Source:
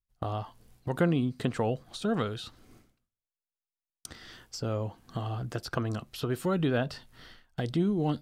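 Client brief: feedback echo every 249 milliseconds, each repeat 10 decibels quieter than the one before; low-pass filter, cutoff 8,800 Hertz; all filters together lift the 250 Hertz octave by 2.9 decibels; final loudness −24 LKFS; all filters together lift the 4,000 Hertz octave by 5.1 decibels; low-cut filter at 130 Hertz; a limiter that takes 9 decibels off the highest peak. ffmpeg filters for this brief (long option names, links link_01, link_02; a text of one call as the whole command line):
ffmpeg -i in.wav -af "highpass=130,lowpass=8800,equalizer=frequency=250:width_type=o:gain=4.5,equalizer=frequency=4000:width_type=o:gain=6.5,alimiter=limit=-19dB:level=0:latency=1,aecho=1:1:249|498|747|996:0.316|0.101|0.0324|0.0104,volume=8dB" out.wav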